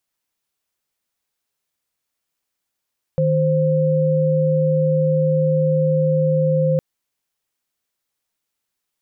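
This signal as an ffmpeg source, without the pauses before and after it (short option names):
-f lavfi -i "aevalsrc='0.141*(sin(2*PI*155.56*t)+sin(2*PI*523.25*t))':d=3.61:s=44100"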